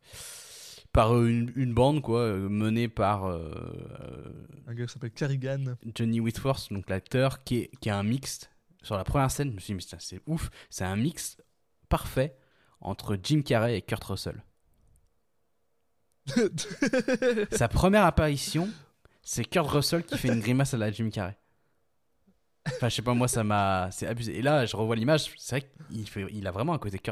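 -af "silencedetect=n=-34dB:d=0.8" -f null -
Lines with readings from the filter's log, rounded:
silence_start: 14.36
silence_end: 16.28 | silence_duration: 1.92
silence_start: 21.31
silence_end: 22.66 | silence_duration: 1.35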